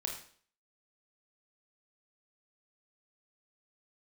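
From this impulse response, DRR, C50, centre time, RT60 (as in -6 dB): 0.5 dB, 6.0 dB, 28 ms, 0.50 s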